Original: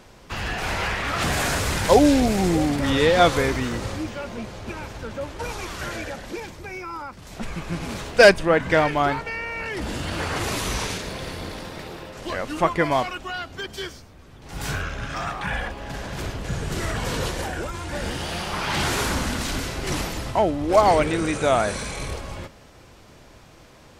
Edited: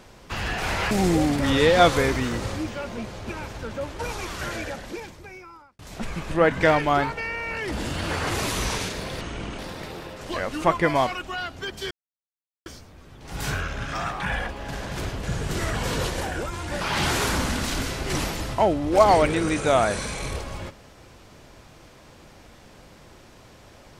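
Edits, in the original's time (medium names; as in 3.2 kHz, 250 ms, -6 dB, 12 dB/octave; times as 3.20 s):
0.91–2.31 s: delete
6.12–7.19 s: fade out
7.71–8.40 s: delete
11.30–11.55 s: speed 66%
13.87 s: insert silence 0.75 s
18.02–18.58 s: delete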